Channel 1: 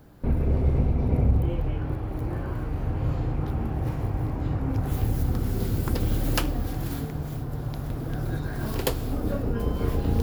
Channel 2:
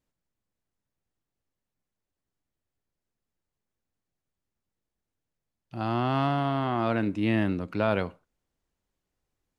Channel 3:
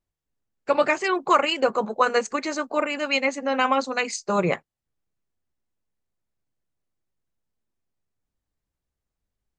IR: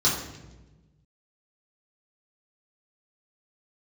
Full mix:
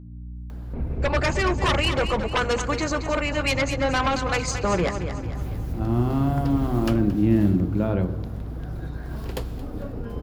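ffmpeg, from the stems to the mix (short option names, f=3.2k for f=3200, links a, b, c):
-filter_complex "[0:a]highshelf=f=8.7k:g=-10,acompressor=mode=upward:threshold=-29dB:ratio=2.5,adelay=500,volume=-5.5dB,asplit=2[a][b];[b]volume=-17.5dB[c];[1:a]tiltshelf=f=840:g=10,aeval=exprs='val(0)+0.0158*(sin(2*PI*60*n/s)+sin(2*PI*2*60*n/s)/2+sin(2*PI*3*60*n/s)/3+sin(2*PI*4*60*n/s)/4+sin(2*PI*5*60*n/s)/5)':c=same,volume=-3.5dB,asplit=3[d][e][f];[e]volume=-20dB[g];[2:a]aeval=exprs='0.447*sin(PI/2*2.82*val(0)/0.447)':c=same,adelay=350,volume=-7dB,asplit=2[h][i];[i]volume=-13.5dB[j];[f]apad=whole_len=437955[k];[h][k]sidechaincompress=threshold=-41dB:ratio=8:attack=5.5:release=390[l];[3:a]atrim=start_sample=2205[m];[g][m]afir=irnorm=-1:irlink=0[n];[c][j]amix=inputs=2:normalize=0,aecho=0:1:224|448|672|896|1120|1344:1|0.46|0.212|0.0973|0.0448|0.0206[o];[a][d][l][n][o]amix=inputs=5:normalize=0"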